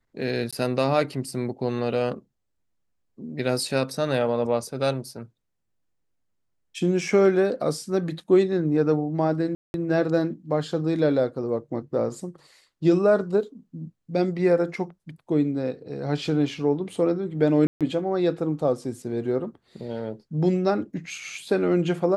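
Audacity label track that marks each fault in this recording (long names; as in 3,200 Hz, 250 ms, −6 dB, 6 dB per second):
0.510000	0.530000	drop-out 16 ms
9.550000	9.740000	drop-out 191 ms
17.670000	17.810000	drop-out 137 ms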